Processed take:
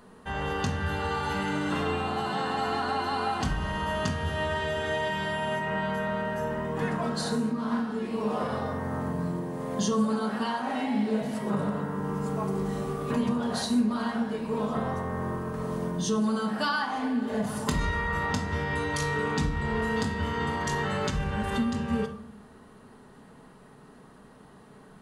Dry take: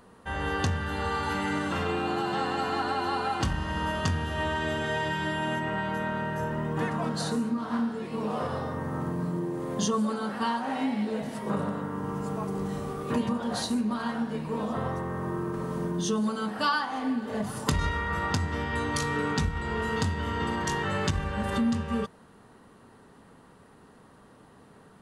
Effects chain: in parallel at +1.5 dB: limiter -23 dBFS, peak gain reduction 8 dB; on the sum: shoebox room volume 900 m³, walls furnished, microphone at 1.4 m; gain -6.5 dB

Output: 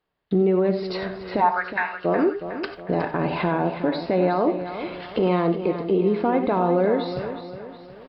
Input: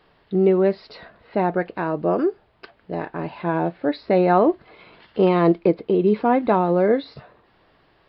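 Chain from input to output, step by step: recorder AGC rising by 5.3 dB/s; gate -52 dBFS, range -29 dB; compressor 2:1, threshold -28 dBFS, peak gain reduction 9.5 dB; limiter -20 dBFS, peak gain reduction 6.5 dB; 1.4–2.04 resonant high-pass 840 Hz -> 3000 Hz, resonance Q 4.9; feedback echo 0.365 s, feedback 44%, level -10.5 dB; non-linear reverb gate 0.11 s rising, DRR 9.5 dB; gain +7 dB

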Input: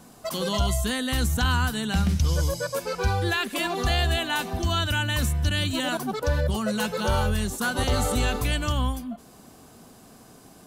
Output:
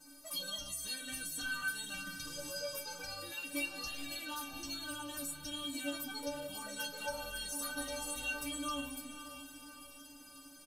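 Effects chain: high shelf 3800 Hz +9.5 dB; comb 6.5 ms, depth 91%; compressor, threshold -24 dBFS, peak gain reduction 8 dB; flange 0.22 Hz, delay 2.5 ms, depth 7.6 ms, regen -75%; metallic resonator 280 Hz, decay 0.34 s, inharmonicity 0.008; diffused feedback echo 0.52 s, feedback 54%, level -10.5 dB; gain +5.5 dB

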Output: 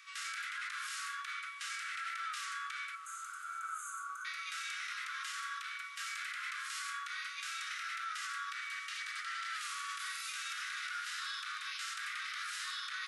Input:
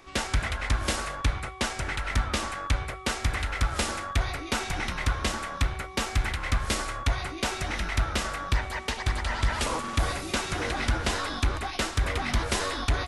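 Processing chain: steep high-pass 1200 Hz 96 dB/oct; harmonic-percussive split percussive -17 dB; limiter -35 dBFS, peak gain reduction 9.5 dB; soft clip -25.5 dBFS, distortion -41 dB; 2.95–4.25 brick-wall FIR band-stop 1600–6100 Hz; diffused feedback echo 0.88 s, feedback 47%, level -16 dB; gain +3 dB

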